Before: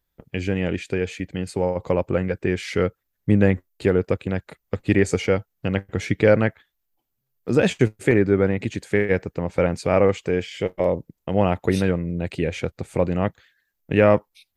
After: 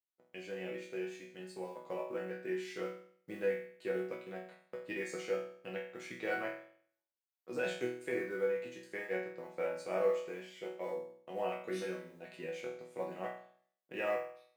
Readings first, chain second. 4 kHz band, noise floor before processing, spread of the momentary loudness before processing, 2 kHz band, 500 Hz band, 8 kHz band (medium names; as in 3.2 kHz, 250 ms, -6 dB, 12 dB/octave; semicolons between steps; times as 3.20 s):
-15.5 dB, -77 dBFS, 10 LU, -14.0 dB, -16.0 dB, -16.0 dB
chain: companding laws mixed up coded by A; high-pass 360 Hz 12 dB/octave; chord resonator B2 sus4, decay 0.56 s; trim +2.5 dB